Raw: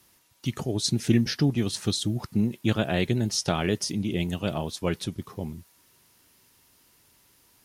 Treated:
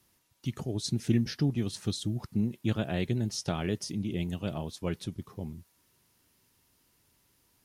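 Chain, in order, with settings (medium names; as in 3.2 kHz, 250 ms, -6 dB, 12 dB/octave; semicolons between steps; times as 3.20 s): bass shelf 320 Hz +5.5 dB; trim -8.5 dB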